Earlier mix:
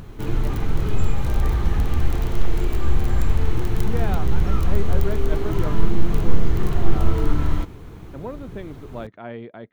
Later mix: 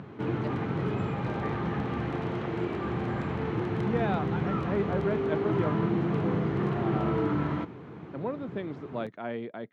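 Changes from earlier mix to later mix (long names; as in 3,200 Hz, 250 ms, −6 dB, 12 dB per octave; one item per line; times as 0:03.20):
background: add low-pass filter 2,300 Hz 12 dB per octave
master: add high-pass filter 130 Hz 24 dB per octave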